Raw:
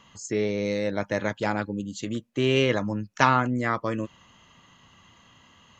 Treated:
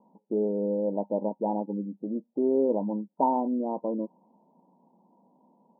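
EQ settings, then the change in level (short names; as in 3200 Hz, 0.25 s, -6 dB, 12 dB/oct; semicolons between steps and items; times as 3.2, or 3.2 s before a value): brick-wall FIR high-pass 170 Hz; Chebyshev low-pass 960 Hz, order 8; 0.0 dB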